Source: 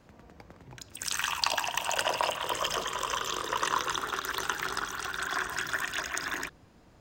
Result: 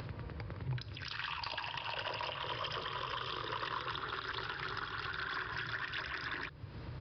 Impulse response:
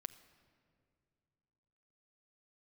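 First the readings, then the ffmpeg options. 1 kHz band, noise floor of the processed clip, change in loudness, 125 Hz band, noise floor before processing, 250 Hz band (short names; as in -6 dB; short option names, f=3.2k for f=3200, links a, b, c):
-8.5 dB, -48 dBFS, -8.5 dB, +7.0 dB, -58 dBFS, -5.0 dB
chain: -af "highpass=65,equalizer=f=720:w=5.2:g=-10.5,acompressor=threshold=-53dB:ratio=2,aresample=11025,asoftclip=type=tanh:threshold=-38.5dB,aresample=44100,lowshelf=f=160:t=q:w=3:g=6,acompressor=mode=upward:threshold=-48dB:ratio=2.5,volume=8dB"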